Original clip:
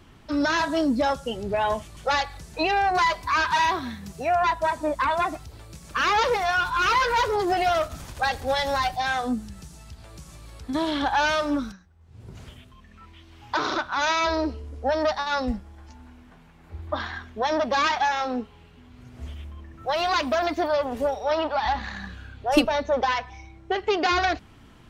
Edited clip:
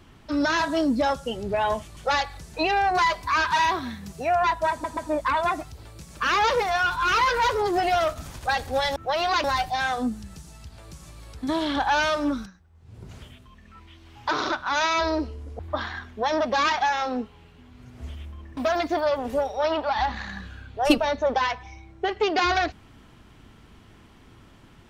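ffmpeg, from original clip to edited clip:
-filter_complex "[0:a]asplit=7[a][b][c][d][e][f][g];[a]atrim=end=4.842[h];[b]atrim=start=4.708:end=4.842[i];[c]atrim=start=4.708:end=8.702[j];[d]atrim=start=19.758:end=20.242[k];[e]atrim=start=8.698:end=14.852[l];[f]atrim=start=16.778:end=19.762[m];[g]atrim=start=20.238[n];[h][i]acrossfade=d=0.004:c1=hsin:c2=hsin[o];[o][j]acrossfade=d=0.004:c1=hsin:c2=hsin[p];[p][k]acrossfade=d=0.004:c1=hsin:c2=hsin[q];[q][l]acrossfade=d=0.004:c1=hsin:c2=hsin[r];[r][m]acrossfade=d=0.004:c1=hsin:c2=hsin[s];[s][n]acrossfade=d=0.004:c1=hsin:c2=hsin"

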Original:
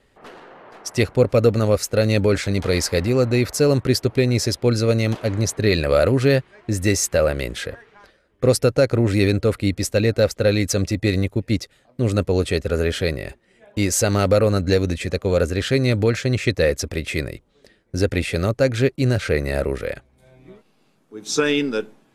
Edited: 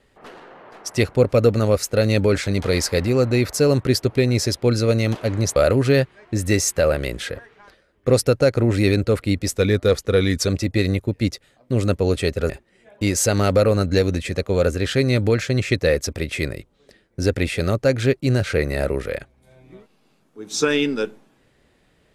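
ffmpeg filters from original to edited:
-filter_complex "[0:a]asplit=5[a][b][c][d][e];[a]atrim=end=5.562[f];[b]atrim=start=5.918:end=9.904[g];[c]atrim=start=9.9:end=10.76,asetpts=PTS-STARTPTS,asetrate=40572,aresample=44100[h];[d]atrim=start=10.756:end=12.782[i];[e]atrim=start=13.248[j];[f][g]acrossfade=d=0.004:c1=hsin:c2=hsin[k];[k][h]acrossfade=d=0.004:c1=hsin:c2=hsin[l];[l][i]acrossfade=d=0.004:c1=hsin:c2=hsin[m];[m][j]acrossfade=d=0.004:c1=hsin:c2=hsin"

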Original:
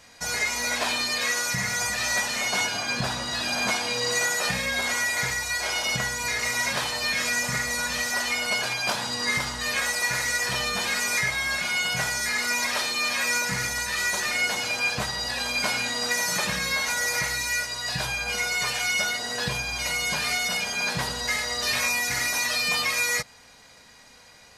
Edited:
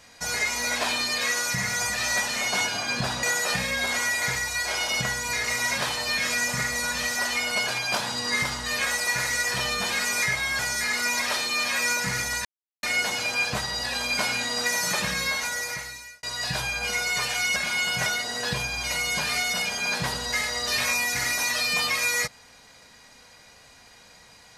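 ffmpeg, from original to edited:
-filter_complex "[0:a]asplit=8[a][b][c][d][e][f][g][h];[a]atrim=end=3.232[i];[b]atrim=start=4.178:end=11.542[j];[c]atrim=start=12.038:end=13.9,asetpts=PTS-STARTPTS,afade=t=out:st=1.858:d=0.004:c=hsin[k];[d]atrim=start=13.9:end=14.28,asetpts=PTS-STARTPTS,volume=0[l];[e]atrim=start=14.28:end=17.68,asetpts=PTS-STARTPTS,afade=t=in:d=0.004:c=hsin,afade=t=out:st=2.38:d=1.02[m];[f]atrim=start=17.68:end=19.012,asetpts=PTS-STARTPTS,afade=t=in:d=0.004:c=hsin[n];[g]atrim=start=11.538:end=12.042[o];[h]atrim=start=19.008[p];[i][j]acrossfade=d=0.004:c1=hsin:c2=hsin[q];[k][l][m][n]concat=n=4:v=0:a=1[r];[q][r]acrossfade=d=0.004:c1=hsin:c2=hsin[s];[s][o]acrossfade=d=0.004:c1=hsin:c2=hsin[t];[t][p]acrossfade=d=0.004:c1=hsin:c2=hsin"

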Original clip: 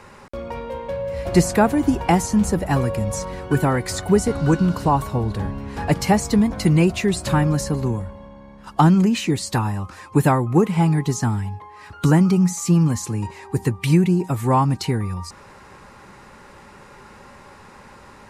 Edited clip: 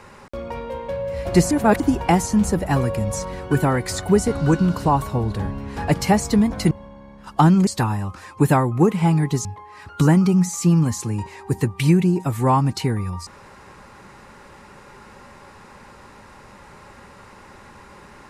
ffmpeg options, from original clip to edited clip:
-filter_complex "[0:a]asplit=6[a][b][c][d][e][f];[a]atrim=end=1.512[g];[b]atrim=start=1.508:end=1.802,asetpts=PTS-STARTPTS,areverse[h];[c]atrim=start=1.798:end=6.712[i];[d]atrim=start=8.108:end=9.072[j];[e]atrim=start=9.418:end=11.202[k];[f]atrim=start=11.488[l];[g][h]acrossfade=d=0.004:c1=hsin:c2=hsin[m];[m][i]acrossfade=d=0.004:c1=hsin:c2=hsin[n];[n][j]acrossfade=d=0.004:c1=hsin:c2=hsin[o];[o][k]acrossfade=d=0.004:c1=hsin:c2=hsin[p];[p][l]acrossfade=d=0.004:c1=hsin:c2=hsin"

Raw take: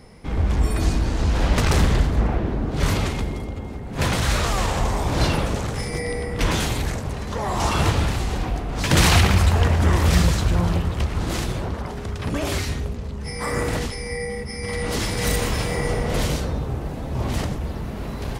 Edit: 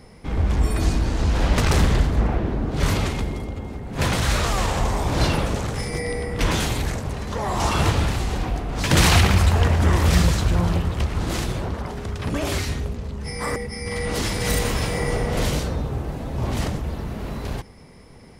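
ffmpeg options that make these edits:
-filter_complex "[0:a]asplit=2[a][b];[a]atrim=end=13.562[c];[b]atrim=start=14.328[d];[c][d]acrossfade=d=0.004:c1=hsin:c2=hsin"

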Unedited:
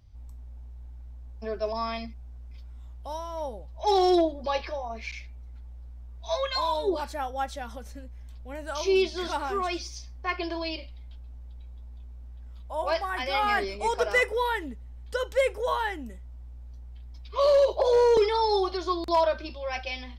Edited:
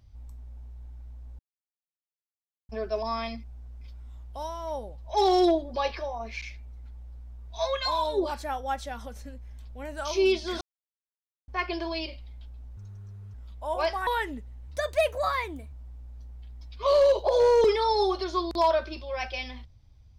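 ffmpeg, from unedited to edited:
-filter_complex "[0:a]asplit=9[a][b][c][d][e][f][g][h][i];[a]atrim=end=1.39,asetpts=PTS-STARTPTS,afade=t=out:st=1.386:d=0.004:c=hsin,apad=pad_dur=1.3[j];[b]atrim=start=1.39:end=9.31,asetpts=PTS-STARTPTS,afade=t=in:d=0.004:c=hsin,afade=t=out:st=7.916:d=0.004:c=hsin[k];[c]atrim=start=9.31:end=10.18,asetpts=PTS-STARTPTS,volume=0[l];[d]atrim=start=10.18:end=11.474,asetpts=PTS-STARTPTS,afade=t=in:d=0.004:c=hsin[m];[e]atrim=start=11.47:end=12.42,asetpts=PTS-STARTPTS,asetrate=73647,aresample=44100[n];[f]atrim=start=12.416:end=13.152[o];[g]atrim=start=14.408:end=15.024[p];[h]atrim=start=15.02:end=16.26,asetpts=PTS-STARTPTS,asetrate=52038,aresample=44100,atrim=end_sample=46342,asetpts=PTS-STARTPTS[q];[i]atrim=start=16.256[r];[j][k][l][m]concat=n=4:v=0:a=1[s];[s][n]acrossfade=d=0.004:c1=hsin:c2=hsin[t];[t][o]acrossfade=d=0.004:c1=hsin:c2=hsin[u];[u][p]acrossfade=d=0.004:c1=hsin:c2=hsin[v];[v][q]acrossfade=d=0.004:c1=hsin:c2=hsin[w];[w][r]acrossfade=d=0.004:c1=hsin:c2=hsin"

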